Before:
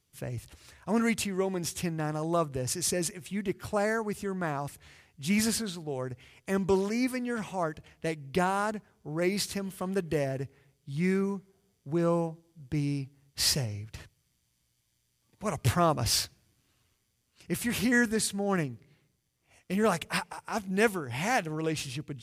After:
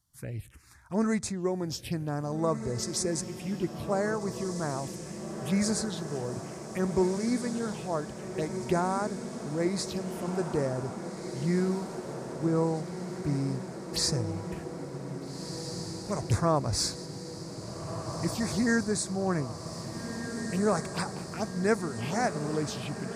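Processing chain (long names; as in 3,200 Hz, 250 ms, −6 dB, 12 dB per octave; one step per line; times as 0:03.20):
phaser swept by the level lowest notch 440 Hz, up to 3,100 Hz, full sweep at −27 dBFS
wrong playback speed 25 fps video run at 24 fps
feedback delay with all-pass diffusion 1,708 ms, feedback 71%, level −8.5 dB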